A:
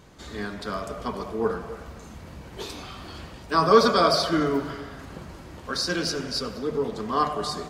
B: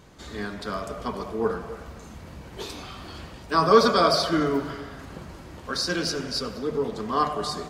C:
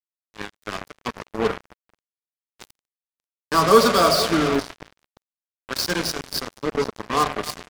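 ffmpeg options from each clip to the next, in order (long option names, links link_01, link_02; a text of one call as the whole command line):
ffmpeg -i in.wav -af anull out.wav
ffmpeg -i in.wav -af "aecho=1:1:475:0.178,acrusher=bits=3:mix=0:aa=0.5,volume=2.5dB" out.wav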